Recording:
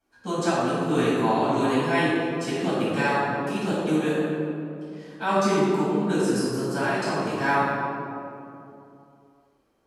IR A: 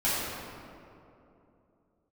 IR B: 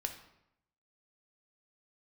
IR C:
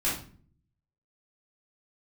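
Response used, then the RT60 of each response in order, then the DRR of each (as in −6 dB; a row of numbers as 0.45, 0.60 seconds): A; 2.9, 0.80, 0.45 seconds; −11.5, 5.0, −8.5 decibels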